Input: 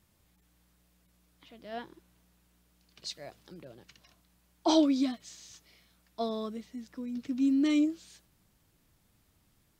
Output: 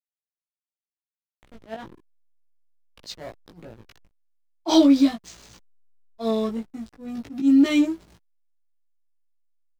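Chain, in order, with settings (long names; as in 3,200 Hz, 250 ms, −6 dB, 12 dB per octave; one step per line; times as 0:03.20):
slack as between gear wheels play −43 dBFS
volume swells 104 ms
double-tracking delay 18 ms −2 dB
level +7.5 dB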